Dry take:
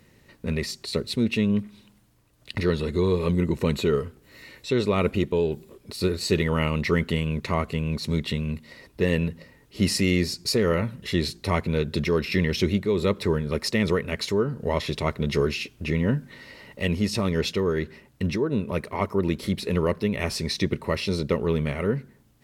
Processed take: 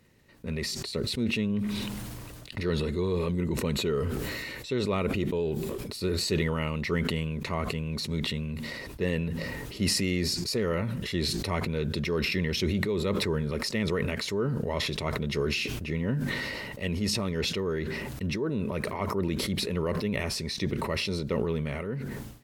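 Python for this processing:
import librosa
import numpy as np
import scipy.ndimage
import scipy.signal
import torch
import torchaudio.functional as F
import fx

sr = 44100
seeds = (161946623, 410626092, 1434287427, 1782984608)

y = fx.fade_out_tail(x, sr, length_s=0.9)
y = fx.sustainer(y, sr, db_per_s=22.0)
y = y * 10.0 ** (-6.5 / 20.0)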